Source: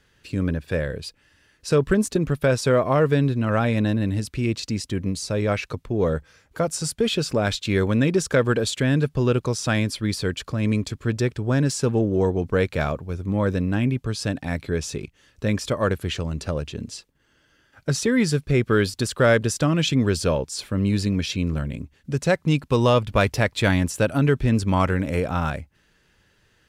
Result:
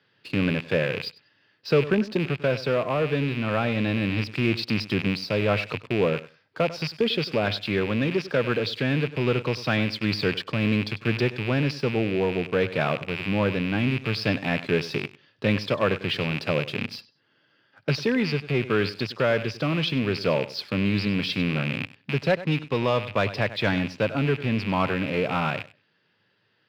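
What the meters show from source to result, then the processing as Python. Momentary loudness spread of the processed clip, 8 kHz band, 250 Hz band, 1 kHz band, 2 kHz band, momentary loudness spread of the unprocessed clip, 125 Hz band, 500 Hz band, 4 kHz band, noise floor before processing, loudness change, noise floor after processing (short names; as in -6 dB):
4 LU, under -15 dB, -3.0 dB, -2.0 dB, +1.0 dB, 9 LU, -4.5 dB, -2.0 dB, +0.5 dB, -63 dBFS, -2.5 dB, -68 dBFS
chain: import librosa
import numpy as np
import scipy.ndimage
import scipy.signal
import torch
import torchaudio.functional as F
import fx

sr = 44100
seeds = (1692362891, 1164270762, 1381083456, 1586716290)

p1 = fx.rattle_buzz(x, sr, strikes_db=-32.0, level_db=-20.0)
p2 = scipy.signal.sosfilt(scipy.signal.cheby1(5, 1.0, [100.0, 5000.0], 'bandpass', fs=sr, output='sos'), p1)
p3 = p2 + fx.echo_feedback(p2, sr, ms=97, feedback_pct=22, wet_db=-16.0, dry=0)
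p4 = fx.leveller(p3, sr, passes=1)
p5 = fx.low_shelf(p4, sr, hz=130.0, db=-6.5)
p6 = fx.rider(p5, sr, range_db=4, speed_s=0.5)
y = p6 * librosa.db_to_amplitude(-4.0)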